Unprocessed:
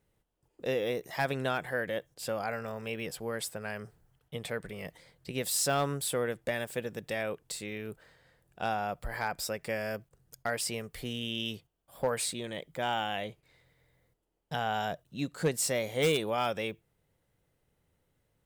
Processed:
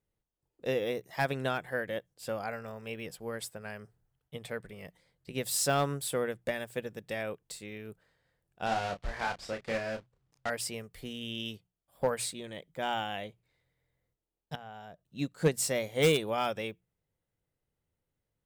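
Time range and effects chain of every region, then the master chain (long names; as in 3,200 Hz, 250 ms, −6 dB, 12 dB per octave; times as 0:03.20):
0:08.66–0:10.50: one scale factor per block 3 bits + low-pass filter 4,700 Hz + double-tracking delay 31 ms −5 dB
0:14.55–0:15.05: downward compressor 1.5 to 1, threshold −50 dBFS + high-shelf EQ 2,300 Hz −6.5 dB
whole clip: low-shelf EQ 190 Hz +3 dB; mains-hum notches 60/120/180 Hz; expander for the loud parts 1.5 to 1, over −51 dBFS; level +2.5 dB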